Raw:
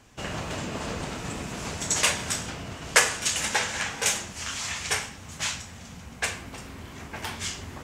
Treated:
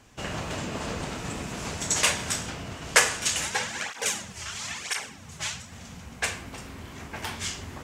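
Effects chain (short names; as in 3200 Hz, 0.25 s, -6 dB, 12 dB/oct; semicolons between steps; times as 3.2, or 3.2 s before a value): 3.44–5.72 tape flanging out of phase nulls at 1 Hz, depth 4.4 ms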